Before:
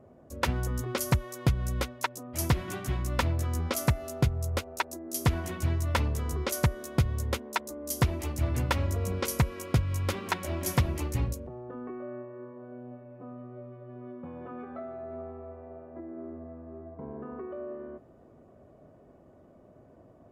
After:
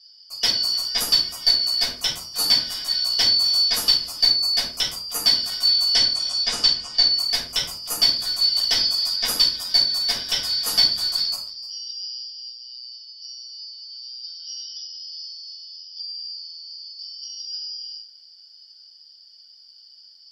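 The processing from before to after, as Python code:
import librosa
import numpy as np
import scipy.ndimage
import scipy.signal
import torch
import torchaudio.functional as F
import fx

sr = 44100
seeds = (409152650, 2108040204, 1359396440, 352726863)

y = fx.band_shuffle(x, sr, order='4321')
y = fx.lowpass(y, sr, hz=fx.line((5.92, 11000.0), (7.1, 6400.0)), slope=24, at=(5.92, 7.1), fade=0.02)
y = y + 10.0 ** (-23.0 / 20.0) * np.pad(y, (int(302 * sr / 1000.0), 0))[:len(y)]
y = fx.room_shoebox(y, sr, seeds[0], volume_m3=300.0, walls='furnished', distance_m=5.8)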